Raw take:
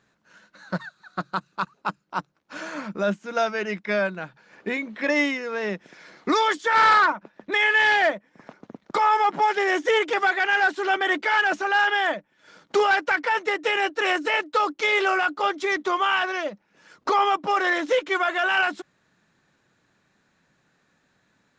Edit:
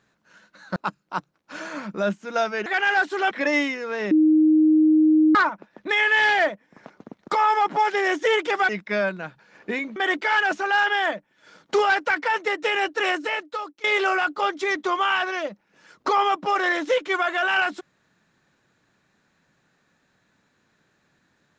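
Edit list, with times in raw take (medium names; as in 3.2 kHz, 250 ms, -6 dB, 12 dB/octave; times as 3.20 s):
0.76–1.77 s: delete
3.67–4.94 s: swap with 10.32–10.97 s
5.74–6.98 s: bleep 311 Hz -13 dBFS
14.05–14.85 s: fade out, to -23 dB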